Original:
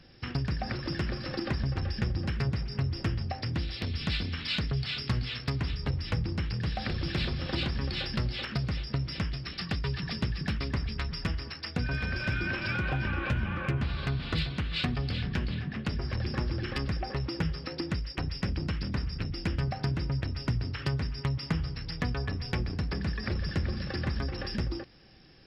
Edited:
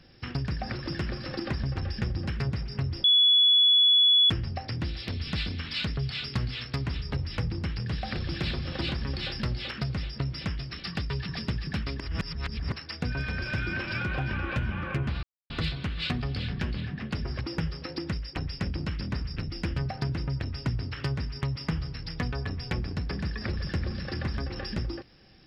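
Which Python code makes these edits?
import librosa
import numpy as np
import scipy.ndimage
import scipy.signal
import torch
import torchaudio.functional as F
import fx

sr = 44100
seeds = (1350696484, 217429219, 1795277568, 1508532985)

y = fx.edit(x, sr, fx.insert_tone(at_s=3.04, length_s=1.26, hz=3400.0, db=-16.5),
    fx.reverse_span(start_s=10.74, length_s=0.72),
    fx.silence(start_s=13.97, length_s=0.27),
    fx.cut(start_s=16.15, length_s=1.08), tone=tone)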